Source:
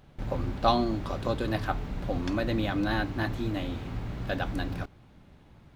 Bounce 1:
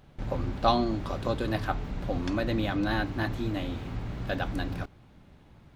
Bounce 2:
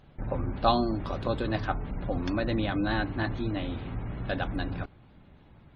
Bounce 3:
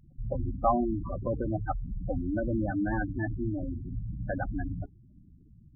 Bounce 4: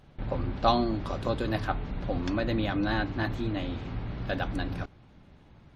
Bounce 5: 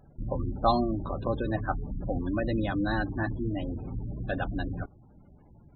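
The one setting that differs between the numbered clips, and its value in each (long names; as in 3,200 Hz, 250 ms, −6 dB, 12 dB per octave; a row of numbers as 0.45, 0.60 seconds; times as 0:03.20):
gate on every frequency bin, under each frame's peak: −60, −35, −10, −45, −20 decibels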